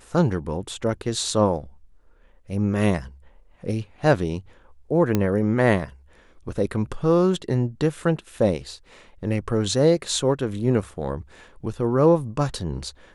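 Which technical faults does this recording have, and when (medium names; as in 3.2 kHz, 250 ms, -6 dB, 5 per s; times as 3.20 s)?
5.15 s: pop -8 dBFS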